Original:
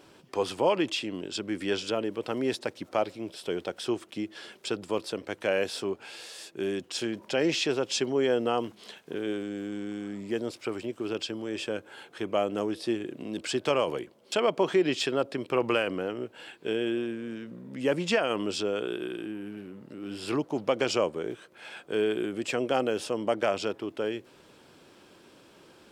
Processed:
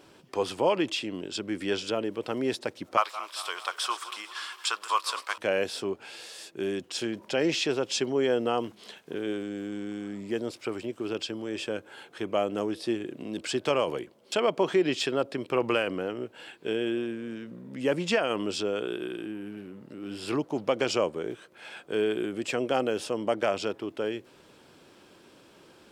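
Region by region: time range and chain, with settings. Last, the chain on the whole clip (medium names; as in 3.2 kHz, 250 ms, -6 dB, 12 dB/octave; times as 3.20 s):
2.97–5.38 s: backward echo that repeats 114 ms, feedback 71%, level -13.5 dB + resonant high-pass 1.1 kHz, resonance Q 6.1 + treble shelf 2.6 kHz +9 dB
whole clip: none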